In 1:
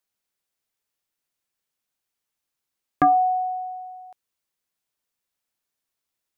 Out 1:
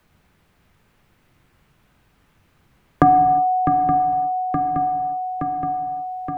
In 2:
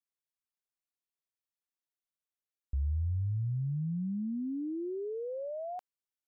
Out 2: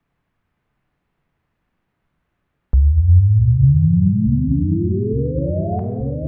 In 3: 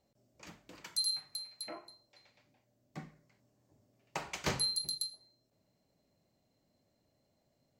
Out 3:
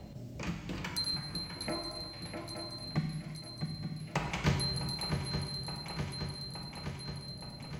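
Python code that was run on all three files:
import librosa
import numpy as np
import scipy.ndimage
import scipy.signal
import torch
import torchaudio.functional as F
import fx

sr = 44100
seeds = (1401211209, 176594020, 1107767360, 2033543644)

y = fx.bass_treble(x, sr, bass_db=15, treble_db=-11)
y = fx.echo_swing(y, sr, ms=871, ratio=3, feedback_pct=45, wet_db=-11.5)
y = fx.rev_gated(y, sr, seeds[0], gate_ms=380, shape='falling', drr_db=4.0)
y = fx.band_squash(y, sr, depth_pct=70)
y = F.gain(torch.from_numpy(y), 5.5).numpy()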